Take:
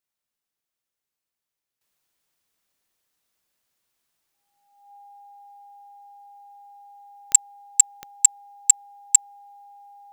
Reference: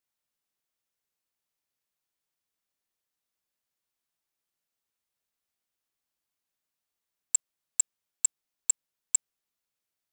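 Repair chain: de-click; band-stop 810 Hz, Q 30; trim 0 dB, from 1.81 s -10.5 dB

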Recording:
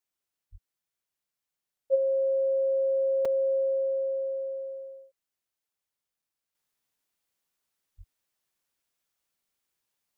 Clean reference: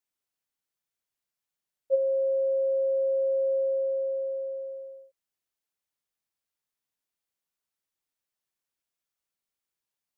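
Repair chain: 0.51–0.63 s: high-pass 140 Hz 24 dB/octave; 7.97–8.09 s: high-pass 140 Hz 24 dB/octave; interpolate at 3.25/6.22 s, 4 ms; trim 0 dB, from 6.55 s -6 dB

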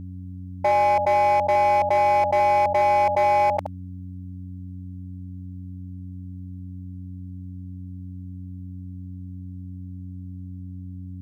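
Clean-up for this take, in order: clip repair -15.5 dBFS; de-hum 91.5 Hz, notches 3; inverse comb 71 ms -8 dB

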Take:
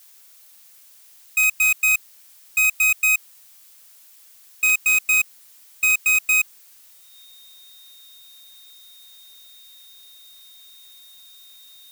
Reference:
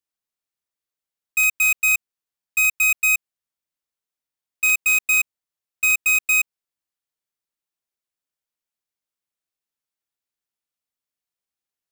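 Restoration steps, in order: band-stop 3.7 kHz, Q 30; noise print and reduce 30 dB

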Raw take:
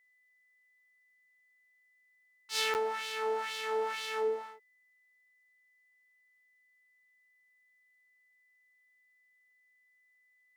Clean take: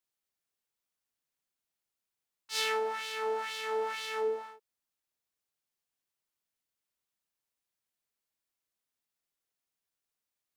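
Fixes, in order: band-stop 2 kHz, Q 30; interpolate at 2.74 s, 9.2 ms

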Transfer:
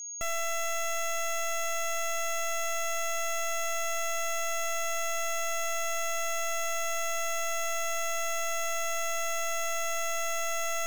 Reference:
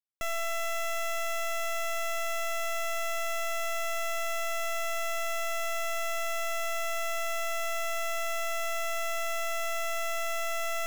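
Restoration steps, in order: band-stop 6.6 kHz, Q 30

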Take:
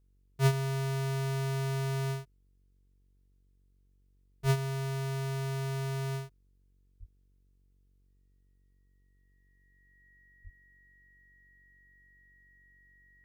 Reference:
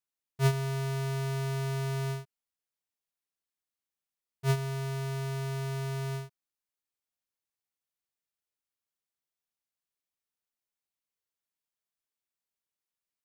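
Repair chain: de-hum 47 Hz, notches 10; band-stop 1.9 kHz, Q 30; 4.42–4.54 s: high-pass 140 Hz 24 dB/octave; 6.99–7.11 s: high-pass 140 Hz 24 dB/octave; 10.43–10.55 s: high-pass 140 Hz 24 dB/octave

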